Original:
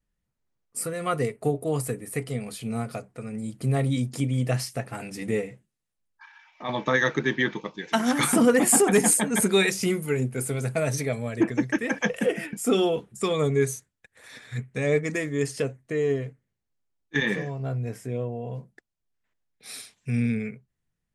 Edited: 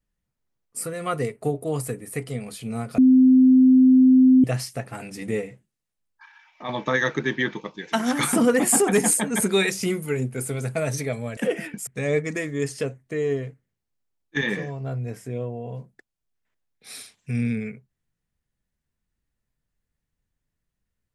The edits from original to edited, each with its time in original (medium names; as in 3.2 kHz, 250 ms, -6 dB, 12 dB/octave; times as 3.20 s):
2.98–4.44 s: bleep 258 Hz -10.5 dBFS
11.37–12.16 s: delete
12.66–14.66 s: delete